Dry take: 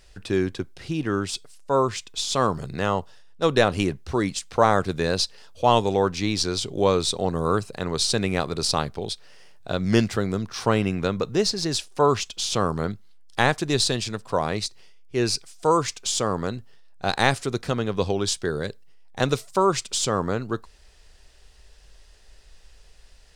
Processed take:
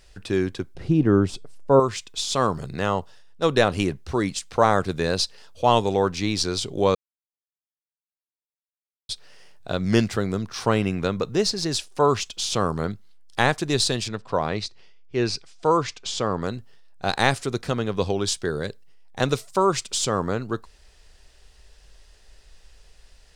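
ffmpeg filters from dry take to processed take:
ffmpeg -i in.wav -filter_complex "[0:a]asettb=1/sr,asplit=3[link_01][link_02][link_03];[link_01]atrim=end=0.754[link_04];[link_02]atrim=start=0.75:end=1.8,asetpts=PTS-STARTPTS,afade=type=in:duration=0.004:curve=qsin,afade=type=out:start_time=1.046:duration=0.004:curve=qsin,tiltshelf=frequency=1200:gain=9[link_05];[link_03]atrim=start=1.796[link_06];[link_04][link_05]acrossfade=duration=0.004:curve1=hsin:curve2=qsin[link_07];[link_07][link_06]acrossfade=duration=0.004:curve1=qsin:curve2=hsin,asettb=1/sr,asplit=3[link_08][link_09][link_10];[link_08]atrim=end=14.084[link_11];[link_09]atrim=start=14.08:end=16.42,asetpts=PTS-STARTPTS,afade=type=in:duration=0.004:curve=qsin,afade=type=out:start_time=2.336:duration=0.004:curve=qsin,lowpass=4800[link_12];[link_10]atrim=start=16.416[link_13];[link_11][link_12]acrossfade=duration=0.004:curve1=hsin:curve2=qsin[link_14];[link_14][link_13]acrossfade=duration=0.004:curve1=qsin:curve2=hsin,asplit=3[link_15][link_16][link_17];[link_15]atrim=end=6.95,asetpts=PTS-STARTPTS,afade=type=out:start_time=6.946:duration=0.004:curve=hsin[link_18];[link_16]atrim=start=6.95:end=9.09,asetpts=PTS-STARTPTS,volume=0[link_19];[link_17]atrim=start=9.09,asetpts=PTS-STARTPTS,afade=type=in:duration=0.004:curve=hsin[link_20];[link_18][link_19][link_20]concat=n=3:v=0:a=1" out.wav

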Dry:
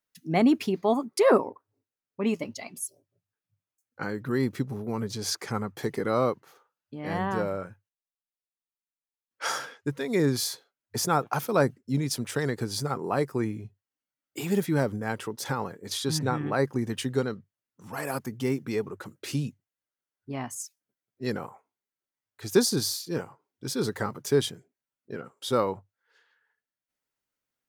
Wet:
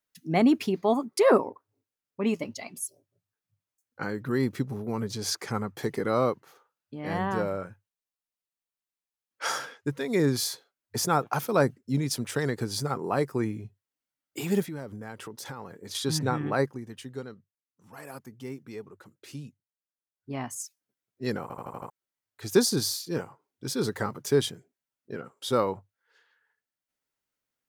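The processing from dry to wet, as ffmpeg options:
ffmpeg -i in.wav -filter_complex "[0:a]asettb=1/sr,asplit=3[link_01][link_02][link_03];[link_01]atrim=end=14.624[link_04];[link_02]atrim=start=14.62:end=15.95,asetpts=PTS-STARTPTS,afade=type=in:duration=0.004:curve=qsin,afade=type=out:start_time=1.326:duration=0.004:curve=qsin,acompressor=threshold=-39dB:ratio=2.5:attack=3.2:release=140:knee=1:detection=peak[link_05];[link_03]atrim=start=15.946[link_06];[link_04][link_05]acrossfade=duration=0.004:curve1=hsin:curve2=qsin[link_07];[link_07][link_06]acrossfade=duration=0.004:curve1=qsin:curve2=hsin,asplit=9[link_08][link_09][link_10][link_11][link_12][link_13][link_14][link_15][link_16];[link_08]atrim=end=16.83,asetpts=PTS-STARTPTS,afade=type=out:start_time=16.61:duration=0.22:curve=qua:silence=0.281838[link_17];[link_09]atrim=start=16.83:end=20.1,asetpts=PTS-STARTPTS,volume=-11dB[link_18];[link_10]atrim=start=20.1:end=21.502,asetpts=PTS-STARTPTS,afade=type=in:duration=0.22:curve=qua:silence=0.281838[link_19];[link_11]atrim=start=21.418:end=21.502[link_20];[link_12]atrim=start=21.418:end=21.502[link_21];[link_13]atrim=start=21.418:end=21.502[link_22];[link_14]atrim=start=21.418:end=21.502[link_23];[link_15]atrim=start=21.418:end=21.502[link_24];[link_16]atrim=start=21.898[link_25];[link_17][link_18][link_19]concat=n=3:v=0:a=1[link_26];[link_26][link_20]acrossfade=duration=0.004:curve1=hsin:curve2=hsin[link_27];[link_27][link_21]acrossfade=duration=0.004:curve1=hsin:curve2=hsin[link_28];[link_28][link_22]acrossfade=duration=0.004:curve1=hsin:curve2=hsin[link_29];[link_29][link_23]acrossfade=duration=0.004:curve1=hsin:curve2=hsin[link_30];[link_30][link_24]acrossfade=duration=0.004:curve1=hsin:curve2=hsin[link_31];[link_31][link_25]acrossfade=duration=0.004:curve1=hsin:curve2=hsin" out.wav

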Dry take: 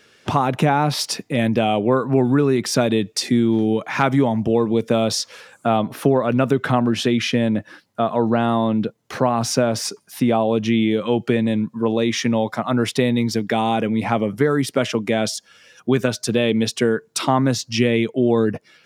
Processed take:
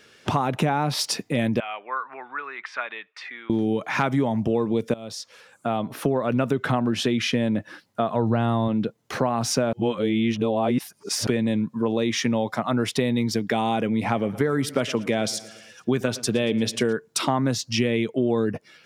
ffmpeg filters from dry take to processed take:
ffmpeg -i in.wav -filter_complex "[0:a]asettb=1/sr,asplit=3[link_01][link_02][link_03];[link_01]atrim=end=1.604[link_04];[link_02]atrim=start=1.6:end=3.5,asetpts=PTS-STARTPTS,afade=type=in:duration=0.004:curve=qsin,afade=type=out:start_time=1.896:duration=0.004:curve=qsin,asuperpass=centerf=1600:order=4:qfactor=1.2[link_05];[link_03]atrim=start=3.496[link_06];[link_04][link_05]acrossfade=duration=0.004:curve1=hsin:curve2=qsin[link_07];[link_07][link_06]acrossfade=duration=0.004:curve1=qsin:curve2=hsin,asettb=1/sr,asplit=3[link_08][link_09][link_10];[link_08]atrim=end=8.144[link_11];[link_09]atrim=start=8.14:end=8.68,asetpts=PTS-STARTPTS,afade=type=in:duration=0.004:curve=qsin,afade=type=out:start_time=0.536:duration=0.004:curve=qsin,equalizer=frequency=100:width_type=o:width=0.77:gain=11.5[link_12];[link_10]atrim=start=8.676[link_13];[link_11][link_12]acrossfade=duration=0.004:curve1=hsin:curve2=qsin[link_14];[link_14][link_13]acrossfade=duration=0.004:curve1=qsin:curve2=hsin,asettb=1/sr,asplit=3[link_15][link_16][link_17];[link_15]atrim=end=13.934[link_18];[link_16]atrim=start=13.93:end=16.93,asetpts=PTS-STARTPTS,afade=type=in:duration=0.004:curve=qsin,afade=type=out:start_time=2.996:duration=0.004:curve=qsin,aecho=1:1:115|230|345|460:0.1|0.055|0.0303|0.0166,atrim=end_sample=132300[link_19];[link_17]atrim=start=16.926[link_20];[link_18][link_19]acrossfade=duration=0.004:curve1=hsin:curve2=qsin[link_21];[link_21][link_20]acrossfade=duration=0.004:curve1=qsin:curve2=hsin,asplit=4[link_22][link_23][link_24][link_25];[link_22]atrim=end=4.94,asetpts=PTS-STARTPTS,afade=type=out:start_time=4.936:duration=0.004:curve=hsin:silence=0.0944061[link_26];[link_23]atrim=start=4.94:end=9.732,asetpts=PTS-STARTPTS,afade=type=in:duration=1.42:silence=0.0944061[link_27];[link_24]atrim=start=9.728:end=11.272,asetpts=PTS-STARTPTS,areverse[link_28];[link_25]atrim=start=11.268[link_29];[link_26][link_27]concat=n=2:v=0:a=1[link_30];[link_30][link_28]acrossfade=duration=0.004:curve1=hsin:curve2=hsin[link_31];[link_31][link_29]acrossfade=duration=0.004:curve1=hsin:curve2=hsin,acompressor=threshold=-22dB:ratio=2" out.wav

